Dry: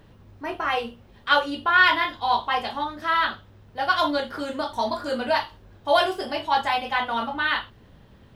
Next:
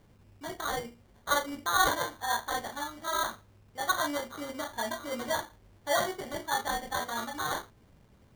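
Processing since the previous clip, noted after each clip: sample-and-hold 17×; gain -8.5 dB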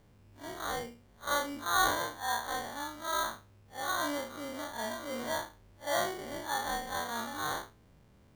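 time blur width 92 ms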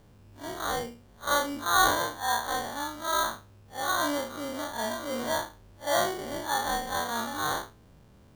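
bell 2100 Hz -4 dB 0.39 oct; gain +5.5 dB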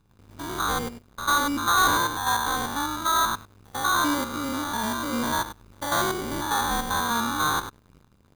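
stepped spectrum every 0.1 s; comb 0.8 ms, depth 69%; sample leveller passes 3; gain -5 dB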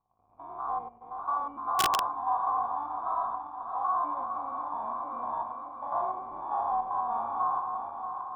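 regenerating reverse delay 0.316 s, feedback 78%, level -7.5 dB; vocal tract filter a; wrapped overs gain 22 dB; gain +4 dB

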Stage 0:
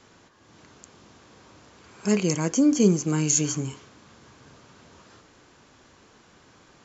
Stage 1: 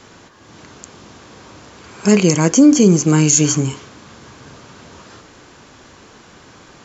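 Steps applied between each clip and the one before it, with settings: maximiser +12.5 dB; gain -1 dB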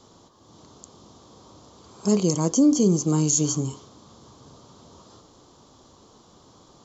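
band shelf 2000 Hz -15 dB 1.1 oct; gain -8.5 dB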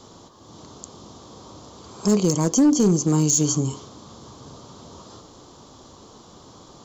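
in parallel at +1 dB: compressor 16:1, threshold -28 dBFS, peak gain reduction 15 dB; on the sum: hard clip -11.5 dBFS, distortion -22 dB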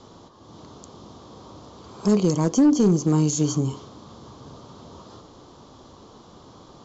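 air absorption 110 m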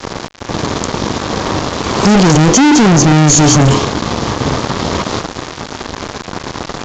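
fuzz box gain 40 dB, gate -45 dBFS; downsampling 16000 Hz; gain +7 dB

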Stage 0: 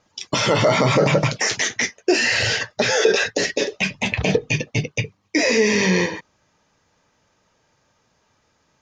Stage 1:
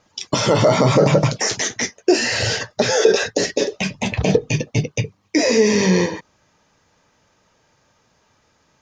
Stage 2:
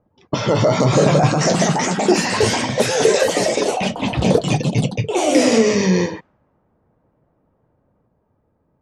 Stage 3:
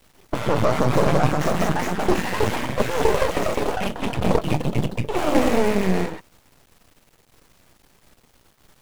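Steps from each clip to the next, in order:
dynamic EQ 2300 Hz, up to -8 dB, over -36 dBFS, Q 0.83; gain +3.5 dB
low shelf 390 Hz +3.5 dB; echoes that change speed 0.652 s, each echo +3 st, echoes 3; low-pass opened by the level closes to 660 Hz, open at -10 dBFS; gain -2.5 dB
median filter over 9 samples; added noise pink -53 dBFS; half-wave rectifier

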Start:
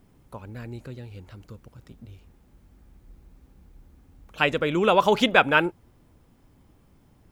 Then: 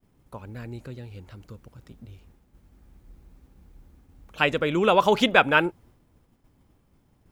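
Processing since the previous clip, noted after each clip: expander -52 dBFS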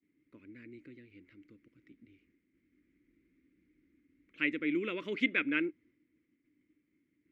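double band-pass 800 Hz, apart 2.8 oct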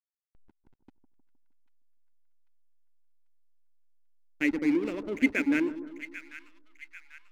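speaker cabinet 200–2500 Hz, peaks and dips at 280 Hz +7 dB, 650 Hz +5 dB, 1300 Hz -7 dB; backlash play -36 dBFS; split-band echo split 1200 Hz, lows 0.155 s, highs 0.792 s, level -12 dB; gain +4 dB

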